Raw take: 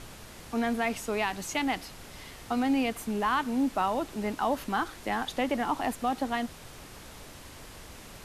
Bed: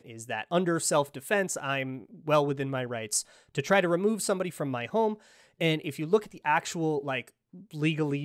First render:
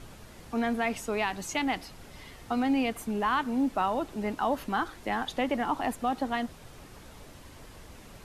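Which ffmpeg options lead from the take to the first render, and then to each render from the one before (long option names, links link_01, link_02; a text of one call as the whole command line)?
ffmpeg -i in.wav -af "afftdn=noise_reduction=6:noise_floor=-48" out.wav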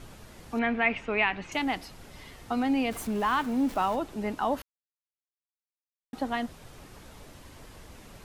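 ffmpeg -i in.wav -filter_complex "[0:a]asettb=1/sr,asplit=3[link_01][link_02][link_03];[link_01]atrim=end=0.594[link_04];[link_02]atrim=start=0.59:end=1.52,asetpts=PTS-STARTPTS,afade=type=in:duration=0.004:curve=qsin,afade=type=out:start_time=0.926:duration=0.004:curve=qsin,lowpass=frequency=2400:width_type=q:width=3[link_05];[link_03]atrim=start=1.516[link_06];[link_04][link_05]acrossfade=duration=0.004:curve1=hsin:curve2=qsin[link_07];[link_07][link_06]acrossfade=duration=0.004:curve1=qsin:curve2=hsin,asettb=1/sr,asplit=3[link_08][link_09][link_10];[link_08]atrim=end=2.914[link_11];[link_09]atrim=start=2.91:end=3.96,asetpts=PTS-STARTPTS,afade=type=in:duration=0.004:curve=qsin,afade=type=out:start_time=1.046:duration=0.004:curve=qsin,aeval=exprs='val(0)+0.5*0.0106*sgn(val(0))':channel_layout=same[link_12];[link_10]atrim=start=3.956[link_13];[link_11][link_12]acrossfade=duration=0.004:curve1=hsin:curve2=qsin[link_14];[link_14][link_13]acrossfade=duration=0.004:curve1=qsin:curve2=hsin,asplit=3[link_15][link_16][link_17];[link_15]atrim=end=4.62,asetpts=PTS-STARTPTS,afade=type=out:start_time=4.616:duration=0.004:curve=hsin[link_18];[link_16]atrim=start=4.62:end=6.13,asetpts=PTS-STARTPTS,volume=0[link_19];[link_17]atrim=start=6.13,asetpts=PTS-STARTPTS,afade=type=in:duration=0.004:curve=hsin[link_20];[link_18][link_19][link_20]concat=n=3:v=0:a=1" out.wav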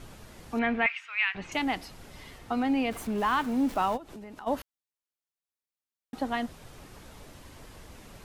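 ffmpeg -i in.wav -filter_complex "[0:a]asettb=1/sr,asplit=3[link_01][link_02][link_03];[link_01]atrim=end=0.864[link_04];[link_02]atrim=start=0.86:end=1.35,asetpts=PTS-STARTPTS,afade=type=in:duration=0.004:curve=qsin,afade=type=out:start_time=0.486:duration=0.004:curve=qsin,highpass=frequency=1400:width=0.5412,highpass=frequency=1400:width=1.3066[link_05];[link_03]atrim=start=1.346[link_06];[link_04][link_05]acrossfade=duration=0.004:curve1=hsin:curve2=qsin[link_07];[link_07][link_06]acrossfade=duration=0.004:curve1=qsin:curve2=hsin,asettb=1/sr,asplit=3[link_08][link_09][link_10];[link_08]atrim=end=2.384[link_11];[link_09]atrim=start=2.38:end=3.18,asetpts=PTS-STARTPTS,afade=type=in:duration=0.004:curve=qsin,afade=type=out:start_time=0.796:duration=0.004:curve=qsin,bass=frequency=250:gain=-1,treble=frequency=4000:gain=-4[link_12];[link_10]atrim=start=3.176[link_13];[link_11][link_12]acrossfade=duration=0.004:curve1=hsin:curve2=qsin[link_14];[link_14][link_13]acrossfade=duration=0.004:curve1=qsin:curve2=hsin,asplit=3[link_15][link_16][link_17];[link_15]afade=type=out:start_time=3.96:duration=0.02[link_18];[link_16]acompressor=threshold=-40dB:ratio=12:attack=3.2:release=140:knee=1:detection=peak,afade=type=in:start_time=3.96:duration=0.02,afade=type=out:start_time=4.46:duration=0.02[link_19];[link_17]afade=type=in:start_time=4.46:duration=0.02[link_20];[link_18][link_19][link_20]amix=inputs=3:normalize=0" out.wav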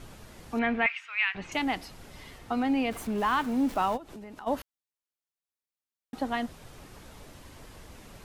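ffmpeg -i in.wav -af anull out.wav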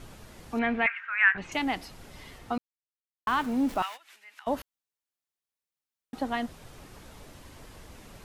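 ffmpeg -i in.wav -filter_complex "[0:a]asettb=1/sr,asplit=3[link_01][link_02][link_03];[link_01]atrim=end=0.874[link_04];[link_02]atrim=start=0.87:end=1.38,asetpts=PTS-STARTPTS,afade=type=in:duration=0.004:curve=qsin,afade=type=out:start_time=0.506:duration=0.004:curve=qsin,lowpass=frequency=1600:width_type=q:width=6.4[link_05];[link_03]atrim=start=1.376[link_06];[link_04][link_05]acrossfade=duration=0.004:curve1=hsin:curve2=qsin[link_07];[link_07][link_06]acrossfade=duration=0.004:curve1=qsin:curve2=hsin,asettb=1/sr,asplit=3[link_08][link_09][link_10];[link_08]atrim=end=3.824[link_11];[link_09]atrim=start=3.82:end=4.47,asetpts=PTS-STARTPTS,afade=type=in:duration=0.004:curve=qsin,afade=type=out:start_time=0.646:duration=0.004:curve=qsin,highpass=frequency=2000:width_type=q:width=2[link_12];[link_10]atrim=start=4.466[link_13];[link_11][link_12]acrossfade=duration=0.004:curve1=hsin:curve2=qsin[link_14];[link_14][link_13]acrossfade=duration=0.004:curve1=qsin:curve2=hsin,asplit=3[link_15][link_16][link_17];[link_15]atrim=end=2.58,asetpts=PTS-STARTPTS,afade=type=out:start_time=2.576:duration=0.004:curve=hsin[link_18];[link_16]atrim=start=2.58:end=3.27,asetpts=PTS-STARTPTS,volume=0[link_19];[link_17]atrim=start=3.27,asetpts=PTS-STARTPTS,afade=type=in:duration=0.004:curve=hsin[link_20];[link_18][link_19][link_20]concat=n=3:v=0:a=1" out.wav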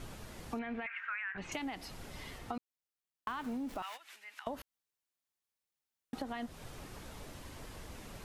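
ffmpeg -i in.wav -af "alimiter=limit=-22dB:level=0:latency=1:release=62,acompressor=threshold=-36dB:ratio=10" out.wav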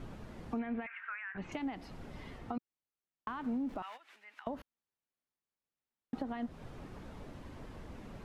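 ffmpeg -i in.wav -af "lowpass=frequency=1500:poles=1,equalizer=frequency=220:width_type=o:width=1.2:gain=4" out.wav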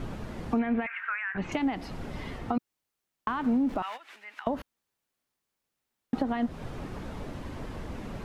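ffmpeg -i in.wav -af "volume=10dB" out.wav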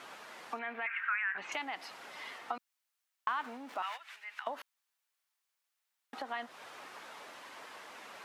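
ffmpeg -i in.wav -af "highpass=1000" out.wav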